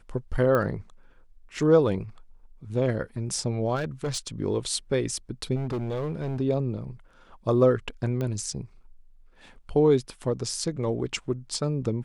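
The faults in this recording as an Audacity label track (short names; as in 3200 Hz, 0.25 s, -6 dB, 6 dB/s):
0.550000	0.550000	pop -14 dBFS
3.750000	4.270000	clipped -24.5 dBFS
5.550000	6.410000	clipped -25.5 dBFS
8.210000	8.210000	pop -19 dBFS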